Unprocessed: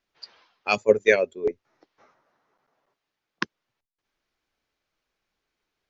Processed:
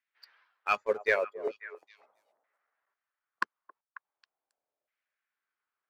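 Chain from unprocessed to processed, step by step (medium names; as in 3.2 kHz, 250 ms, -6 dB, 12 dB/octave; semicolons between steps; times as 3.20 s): LFO band-pass saw down 0.41 Hz 590–2000 Hz; waveshaping leveller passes 1; repeats whose band climbs or falls 271 ms, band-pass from 590 Hz, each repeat 1.4 oct, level -12 dB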